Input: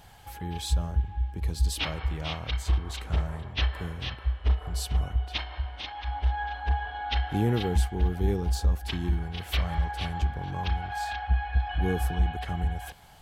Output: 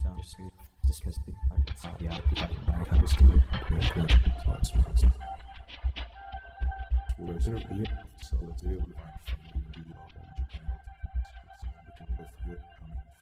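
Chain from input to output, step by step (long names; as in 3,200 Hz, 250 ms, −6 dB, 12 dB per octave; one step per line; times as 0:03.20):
slices reordered back to front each 178 ms, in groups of 5
source passing by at 0:03.59, 21 m/s, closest 9.3 metres
on a send: single-tap delay 144 ms −15.5 dB
on the sum: fake sidechain pumping 122 BPM, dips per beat 2, −9 dB, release 93 ms
in parallel at −10 dB: wave folding −29 dBFS
on the sum: pitch vibrato 2.6 Hz 16 cents
low-shelf EQ 130 Hz +9.5 dB
soft clipping −17 dBFS, distortion −16 dB
dense smooth reverb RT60 1.6 s, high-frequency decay 1×, DRR 5 dB
dynamic equaliser 360 Hz, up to +4 dB, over −49 dBFS, Q 0.99
reverb reduction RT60 1.1 s
level +5 dB
Opus 32 kbit/s 48,000 Hz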